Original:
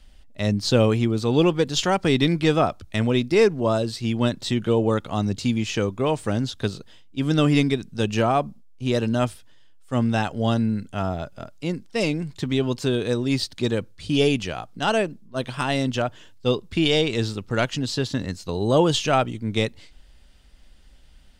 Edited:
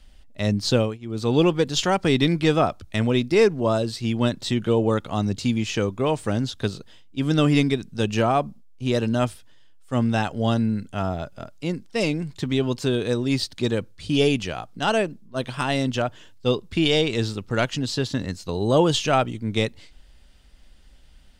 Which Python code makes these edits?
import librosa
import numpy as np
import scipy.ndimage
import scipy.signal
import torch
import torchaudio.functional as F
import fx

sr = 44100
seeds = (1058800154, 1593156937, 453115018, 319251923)

y = fx.edit(x, sr, fx.fade_down_up(start_s=0.72, length_s=0.55, db=-24.0, fade_s=0.26), tone=tone)